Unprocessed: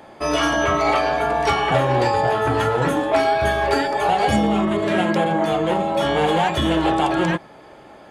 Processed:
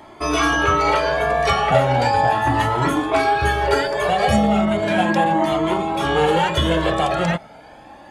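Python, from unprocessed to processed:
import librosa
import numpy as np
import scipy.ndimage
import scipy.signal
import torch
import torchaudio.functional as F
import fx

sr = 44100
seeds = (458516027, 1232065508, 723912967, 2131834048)

y = fx.comb_cascade(x, sr, direction='rising', hz=0.36)
y = y * 10.0 ** (6.0 / 20.0)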